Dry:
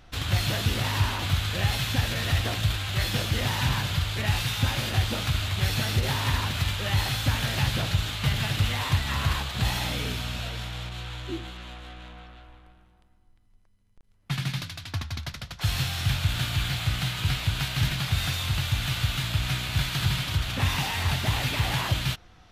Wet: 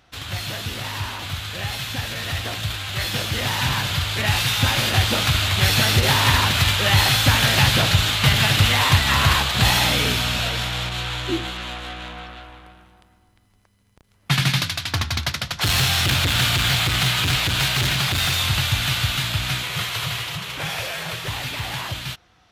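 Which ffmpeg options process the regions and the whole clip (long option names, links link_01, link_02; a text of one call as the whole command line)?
ffmpeg -i in.wav -filter_complex "[0:a]asettb=1/sr,asplit=3[link_01][link_02][link_03];[link_01]atrim=end=14.754[link_04];[link_02]atrim=start=14.75:end=18.38,asetpts=PTS-STARTPTS,afade=type=in:duration=0.004:curve=qsin,afade=type=out:start_time=3.626:duration=0.004:curve=qsin,asoftclip=type=hard:threshold=-24.5dB,bandreject=frequency=50:width_type=h:width=6,bandreject=frequency=100:width_type=h:width=6,bandreject=frequency=150:width_type=h:width=6,bandreject=frequency=200:width_type=h:width=6,bandreject=frequency=250:width_type=h:width=6,bandreject=frequency=300:width_type=h:width=6,bandreject=frequency=350:width_type=h:width=6,bandreject=frequency=400:width_type=h:width=6[link_05];[link_03]atrim=start=18.376[link_06];[link_04][link_05]acrossfade=duration=0.004:curve1=hsin:curve2=qsin[link_07];[link_07][link_06]acrossfade=duration=0.004:curve1=qsin:curve2=hsin,asettb=1/sr,asplit=3[link_08][link_09][link_10];[link_08]atrim=end=19.634[link_11];[link_09]atrim=start=19.63:end=21.28,asetpts=PTS-STARTPTS,afade=type=in:duration=0.004:curve=qsin,afade=type=out:start_time=1.646:duration=0.004:curve=qsin,highpass=130,afreqshift=-250[link_12];[link_10]atrim=start=21.276[link_13];[link_11][link_12]acrossfade=duration=0.004:curve1=hsin:curve2=qsin[link_14];[link_14][link_13]acrossfade=duration=0.004:curve1=qsin:curve2=hsin,highpass=59,lowshelf=frequency=420:gain=-5.5,dynaudnorm=framelen=490:gausssize=17:maxgain=14.5dB" out.wav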